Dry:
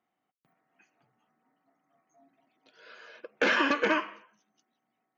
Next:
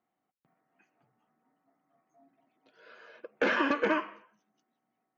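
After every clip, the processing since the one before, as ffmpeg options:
-af "highshelf=f=2400:g=-10.5"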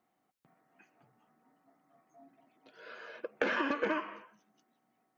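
-af "acompressor=threshold=0.02:ratio=6,volume=1.78"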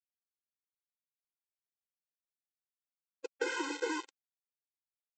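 -af "aresample=16000,acrusher=bits=5:mix=0:aa=0.000001,aresample=44100,afftfilt=real='re*eq(mod(floor(b*sr/1024/270),2),1)':imag='im*eq(mod(floor(b*sr/1024/270),2),1)':win_size=1024:overlap=0.75,volume=0.841"

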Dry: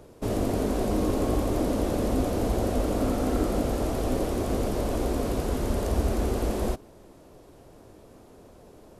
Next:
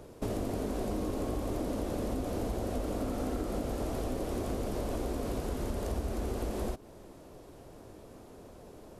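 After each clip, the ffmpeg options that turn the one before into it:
-af "acompressor=threshold=0.0282:ratio=5"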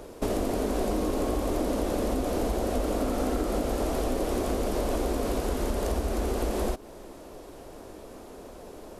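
-af "equalizer=f=120:t=o:w=1.3:g=-10,volume=2.51"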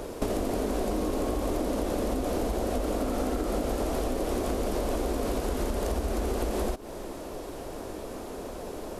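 -af "acompressor=threshold=0.0224:ratio=4,volume=2.11"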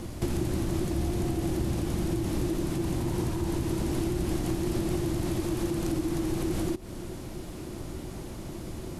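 -af "afreqshift=-380"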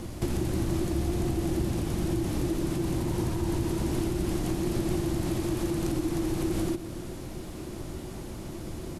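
-af "aecho=1:1:125|250|375|500|625|750|875:0.237|0.142|0.0854|0.0512|0.0307|0.0184|0.0111"

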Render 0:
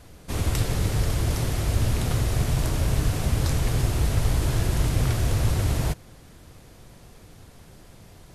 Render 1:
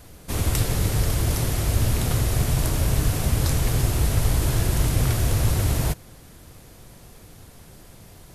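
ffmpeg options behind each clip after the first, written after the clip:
-af "highshelf=f=11000:g=11.5,volume=1.19"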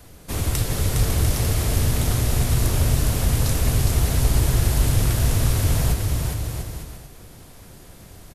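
-filter_complex "[0:a]acrossover=split=120|3000[s0][s1][s2];[s1]acompressor=threshold=0.0501:ratio=6[s3];[s0][s3][s2]amix=inputs=3:normalize=0,asplit=2[s4][s5];[s5]aecho=0:1:410|697|897.9|1039|1137:0.631|0.398|0.251|0.158|0.1[s6];[s4][s6]amix=inputs=2:normalize=0"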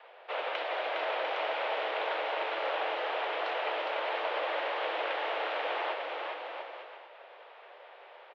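-af "highpass=f=310:t=q:w=0.5412,highpass=f=310:t=q:w=1.307,lowpass=f=3000:t=q:w=0.5176,lowpass=f=3000:t=q:w=0.7071,lowpass=f=3000:t=q:w=1.932,afreqshift=200"

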